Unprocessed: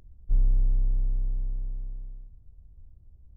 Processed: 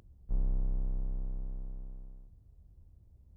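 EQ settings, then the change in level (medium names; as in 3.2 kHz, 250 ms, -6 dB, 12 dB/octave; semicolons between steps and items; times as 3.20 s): high-pass 100 Hz 6 dB/octave; +1.0 dB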